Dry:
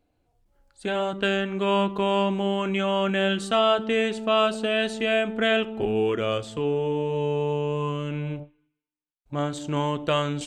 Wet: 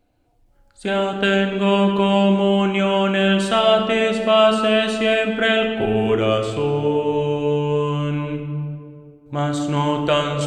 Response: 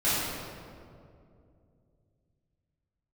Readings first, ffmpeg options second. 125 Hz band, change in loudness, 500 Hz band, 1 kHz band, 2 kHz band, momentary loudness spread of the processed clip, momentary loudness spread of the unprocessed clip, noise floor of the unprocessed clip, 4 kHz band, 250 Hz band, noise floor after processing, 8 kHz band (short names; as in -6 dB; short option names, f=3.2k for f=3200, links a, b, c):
+7.5 dB, +6.0 dB, +6.0 dB, +5.5 dB, +6.0 dB, 9 LU, 8 LU, -77 dBFS, +6.0 dB, +8.0 dB, -57 dBFS, +5.5 dB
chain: -filter_complex "[0:a]asplit=2[a][b];[1:a]atrim=start_sample=2205[c];[b][c]afir=irnorm=-1:irlink=0,volume=-17dB[d];[a][d]amix=inputs=2:normalize=0,volume=4dB"